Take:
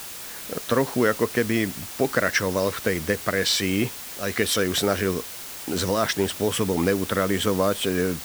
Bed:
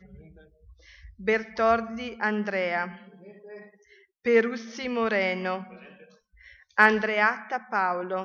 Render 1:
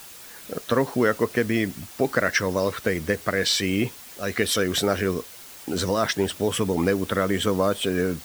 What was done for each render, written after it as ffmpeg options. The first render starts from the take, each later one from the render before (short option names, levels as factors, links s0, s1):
-af "afftdn=nr=7:nf=-37"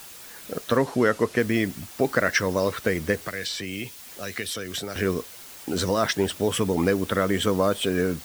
-filter_complex "[0:a]asettb=1/sr,asplit=3[s0][s1][s2];[s0]atrim=end=0.774[s3];[s1]atrim=start=0.77:end=1.39,asetpts=PTS-STARTPTS,afade=t=in:d=0.004:c=qsin,afade=t=out:st=0.616:d=0.004:c=qsin,lowpass=11000[s4];[s2]atrim=start=1.386[s5];[s3][s4]acrossfade=d=0.004:c1=hsin:c2=qsin[s6];[s6][s5]acrossfade=d=0.004:c1=qsin:c2=hsin,asettb=1/sr,asplit=3[s7][s8][s9];[s7]atrim=end=3.184[s10];[s8]atrim=start=3.18:end=4.96,asetpts=PTS-STARTPTS,afade=t=in:d=0.004:c=qsin,afade=t=out:st=1.776:d=0.004:c=qsin,acrossover=split=110|2100[s11][s12][s13];[s11]acompressor=threshold=0.00447:ratio=4[s14];[s12]acompressor=threshold=0.02:ratio=4[s15];[s13]acompressor=threshold=0.0282:ratio=4[s16];[s14][s15][s16]amix=inputs=3:normalize=0[s17];[s9]atrim=start=4.956[s18];[s10][s17]acrossfade=d=0.004:c1=hsin:c2=qsin[s19];[s19][s18]acrossfade=d=0.004:c1=qsin:c2=hsin"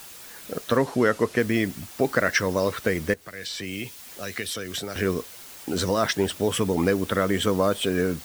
-filter_complex "[0:a]asplit=2[s0][s1];[s0]atrim=end=3.14,asetpts=PTS-STARTPTS,afade=t=out:st=3.136:d=0.004:c=hsin:silence=0.149624[s2];[s1]atrim=start=3.14,asetpts=PTS-STARTPTS,afade=t=in:d=0.53:silence=0.149624[s3];[s2][s3]concat=n=2:v=0:a=1"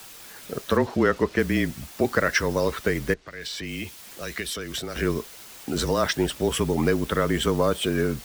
-filter_complex "[0:a]afreqshift=-29,acrossover=split=6300[s0][s1];[s1]aeval=exprs='val(0)*gte(abs(val(0)),0.00596)':c=same[s2];[s0][s2]amix=inputs=2:normalize=0"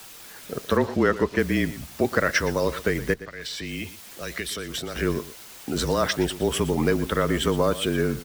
-af "aecho=1:1:118:0.168"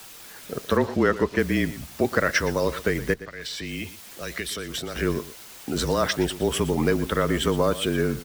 -af anull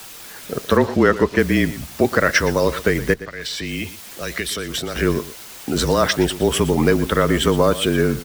-af "volume=2,alimiter=limit=0.794:level=0:latency=1"